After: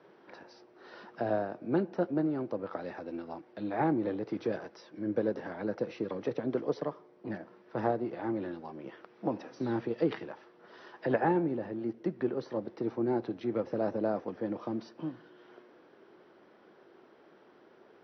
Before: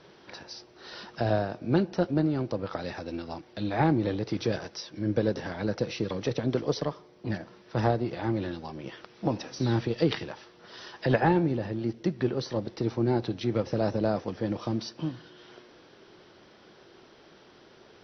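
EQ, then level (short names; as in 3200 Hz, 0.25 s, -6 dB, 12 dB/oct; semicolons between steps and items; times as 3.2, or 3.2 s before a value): three-band isolator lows -23 dB, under 230 Hz, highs -15 dB, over 2200 Hz; bell 92 Hz +8.5 dB 2.7 oct; -4.0 dB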